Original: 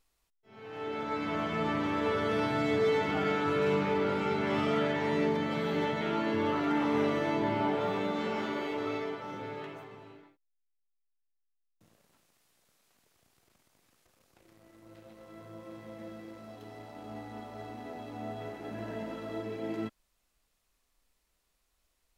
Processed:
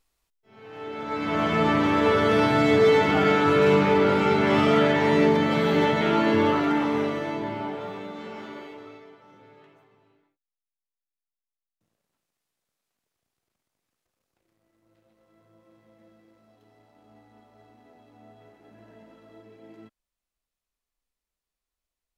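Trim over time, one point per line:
0.95 s +1 dB
1.47 s +9.5 dB
6.39 s +9.5 dB
7.13 s +1.5 dB
8.08 s -5 dB
8.58 s -5 dB
9.01 s -12.5 dB

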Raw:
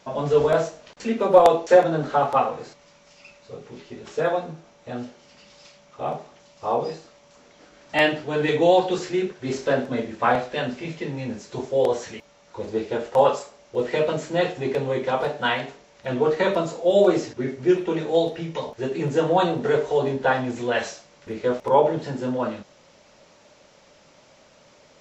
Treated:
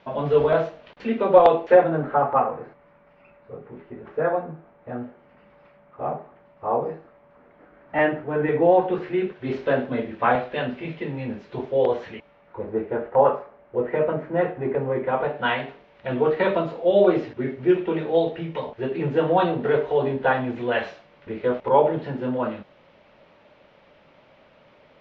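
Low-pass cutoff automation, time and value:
low-pass 24 dB/octave
1.47 s 3.4 kHz
2.21 s 1.9 kHz
8.71 s 1.9 kHz
9.34 s 3.2 kHz
12.09 s 3.2 kHz
12.71 s 1.9 kHz
14.95 s 1.9 kHz
15.55 s 3.2 kHz

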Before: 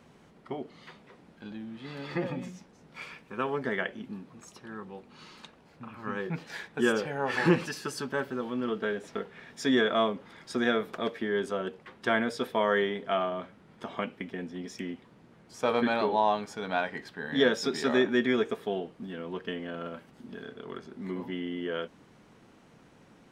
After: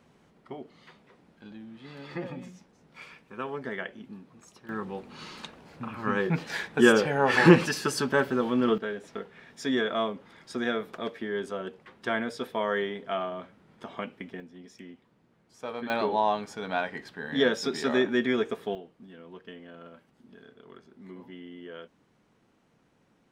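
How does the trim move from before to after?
-4 dB
from 4.69 s +7 dB
from 8.78 s -2.5 dB
from 14.40 s -9.5 dB
from 15.90 s 0 dB
from 18.75 s -9.5 dB

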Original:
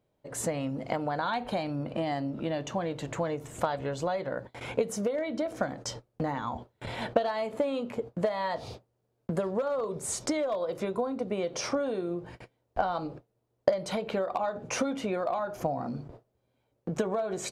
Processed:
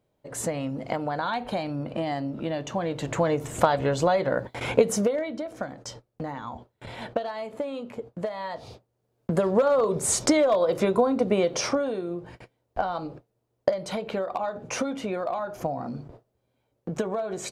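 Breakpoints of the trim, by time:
2.68 s +2 dB
3.37 s +8.5 dB
4.95 s +8.5 dB
5.43 s -2.5 dB
8.74 s -2.5 dB
9.58 s +9 dB
11.36 s +9 dB
12.02 s +1 dB

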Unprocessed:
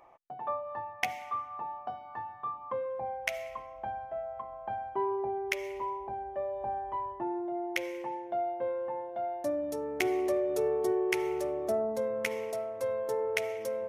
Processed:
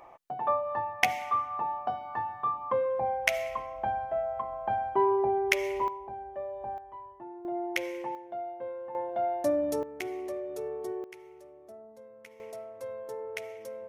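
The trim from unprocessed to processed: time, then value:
+6.5 dB
from 5.88 s -2.5 dB
from 6.78 s -10 dB
from 7.45 s +1.5 dB
from 8.15 s -5 dB
from 8.95 s +5 dB
from 9.83 s -7 dB
from 11.04 s -19 dB
from 12.40 s -7 dB

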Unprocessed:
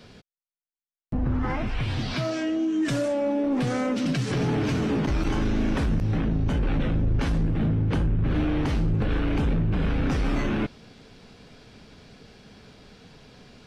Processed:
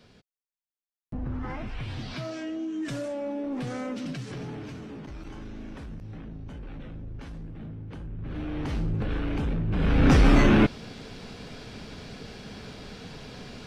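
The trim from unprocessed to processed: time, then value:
3.93 s -7.5 dB
4.88 s -16 dB
7.98 s -16 dB
8.77 s -4.5 dB
9.65 s -4.5 dB
10.11 s +7.5 dB

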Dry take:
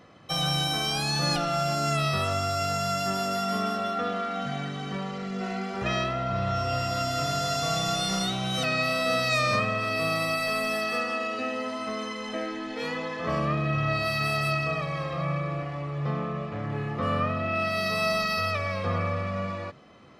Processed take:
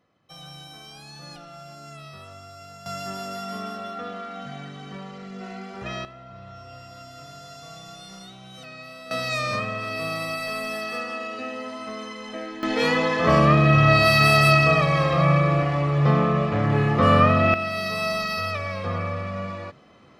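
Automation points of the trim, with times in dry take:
-16 dB
from 2.86 s -5 dB
from 6.05 s -15 dB
from 9.11 s -2 dB
from 12.63 s +10.5 dB
from 17.54 s 0 dB

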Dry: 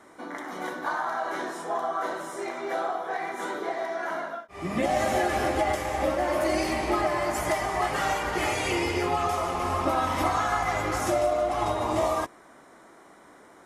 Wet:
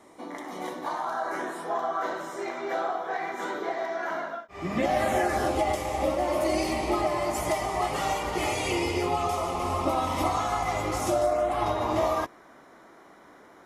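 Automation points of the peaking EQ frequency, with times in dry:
peaking EQ -12.5 dB 0.38 oct
1.01 s 1.5 kHz
1.78 s 9.9 kHz
4.84 s 9.9 kHz
5.59 s 1.6 kHz
11.07 s 1.6 kHz
11.68 s 8.5 kHz

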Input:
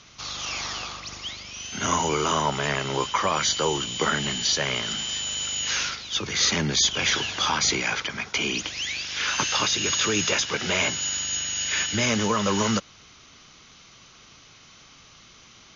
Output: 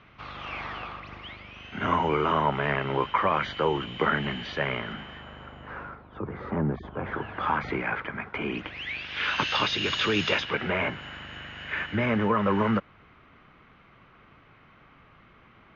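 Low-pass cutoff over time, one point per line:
low-pass 24 dB/octave
4.60 s 2.4 kHz
5.84 s 1.2 kHz
7.03 s 1.2 kHz
7.45 s 1.9 kHz
8.38 s 1.9 kHz
9.50 s 3.7 kHz
10.32 s 3.7 kHz
10.72 s 2.1 kHz

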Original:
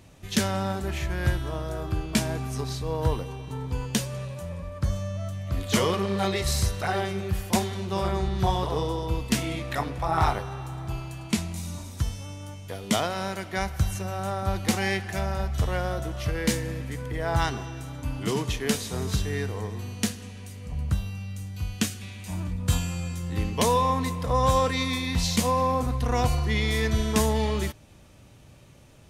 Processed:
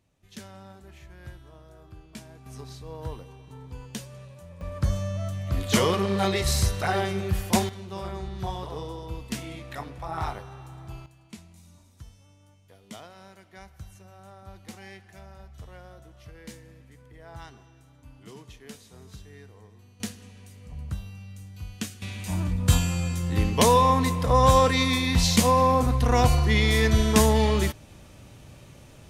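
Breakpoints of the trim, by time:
-18.5 dB
from 2.46 s -10.5 dB
from 4.61 s +1.5 dB
from 7.69 s -8 dB
from 11.06 s -18.5 dB
from 20.00 s -7 dB
from 22.02 s +4 dB

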